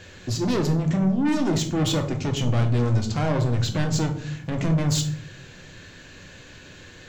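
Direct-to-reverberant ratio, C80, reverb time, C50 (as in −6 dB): 4.0 dB, 14.0 dB, 0.60 s, 10.5 dB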